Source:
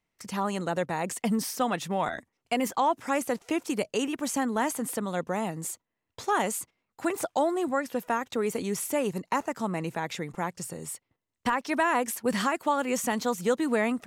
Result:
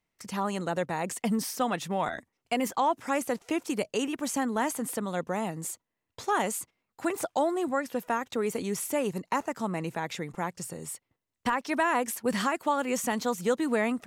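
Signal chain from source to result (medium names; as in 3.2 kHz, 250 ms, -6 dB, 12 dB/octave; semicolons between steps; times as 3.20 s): trim -1 dB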